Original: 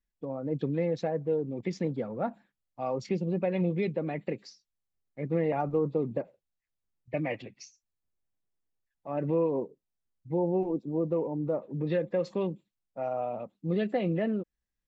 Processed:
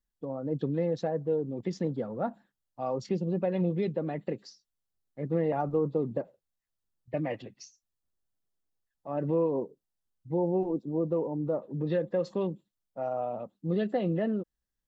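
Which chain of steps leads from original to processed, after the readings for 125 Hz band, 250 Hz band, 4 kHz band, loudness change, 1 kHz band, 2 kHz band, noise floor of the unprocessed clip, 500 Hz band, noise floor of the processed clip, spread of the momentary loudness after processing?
0.0 dB, 0.0 dB, -1.0 dB, 0.0 dB, 0.0 dB, -4.0 dB, under -85 dBFS, 0.0 dB, under -85 dBFS, 11 LU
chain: bell 2300 Hz -11.5 dB 0.33 oct

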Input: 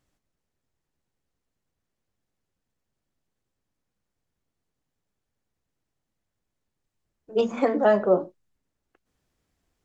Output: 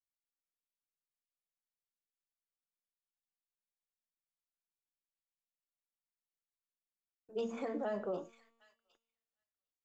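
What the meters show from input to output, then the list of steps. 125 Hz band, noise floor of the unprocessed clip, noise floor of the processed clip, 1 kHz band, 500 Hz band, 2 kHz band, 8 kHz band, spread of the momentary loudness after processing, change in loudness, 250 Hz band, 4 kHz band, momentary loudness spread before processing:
-16.0 dB, -83 dBFS, under -85 dBFS, -17.5 dB, -17.0 dB, -17.0 dB, n/a, 7 LU, -16.5 dB, -15.0 dB, -14.0 dB, 9 LU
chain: limiter -16 dBFS, peak gain reduction 7.5 dB; high shelf 5500 Hz +8 dB; on a send: thin delay 0.755 s, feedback 41%, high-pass 2800 Hz, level -10 dB; on the sum: gate -57 dBFS, range -24 dB; resonator 230 Hz, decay 1.2 s, mix 60%; gain -6 dB

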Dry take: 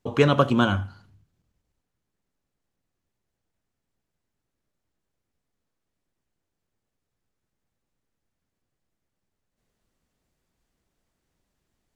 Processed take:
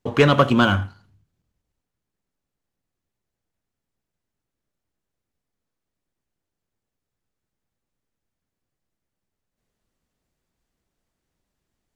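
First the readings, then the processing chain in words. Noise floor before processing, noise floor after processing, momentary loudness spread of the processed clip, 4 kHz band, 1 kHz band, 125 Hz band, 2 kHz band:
-82 dBFS, -84 dBFS, 12 LU, +5.5 dB, +4.5 dB, +3.0 dB, +6.0 dB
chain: dynamic EQ 2100 Hz, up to +4 dB, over -37 dBFS, Q 0.79; sample leveller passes 1

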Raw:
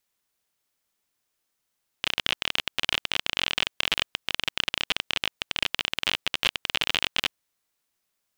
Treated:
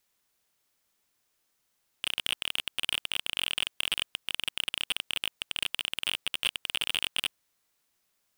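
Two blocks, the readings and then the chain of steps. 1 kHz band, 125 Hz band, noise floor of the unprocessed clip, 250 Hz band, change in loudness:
-9.0 dB, -9.5 dB, -79 dBFS, -10.0 dB, -4.0 dB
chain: hard clip -20 dBFS, distortion -5 dB; gain +3 dB

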